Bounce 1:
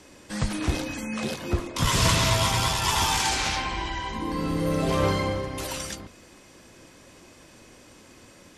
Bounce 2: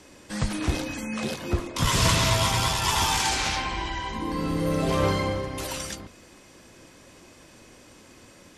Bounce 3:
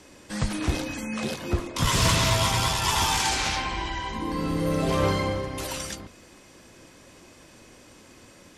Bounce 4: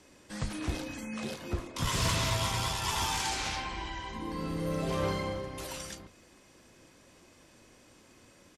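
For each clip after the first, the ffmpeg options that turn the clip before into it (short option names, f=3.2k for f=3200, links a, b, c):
-af anull
-af "asoftclip=type=hard:threshold=-13.5dB"
-filter_complex "[0:a]asplit=2[a][b];[b]adelay=36,volume=-13.5dB[c];[a][c]amix=inputs=2:normalize=0,volume=-8dB"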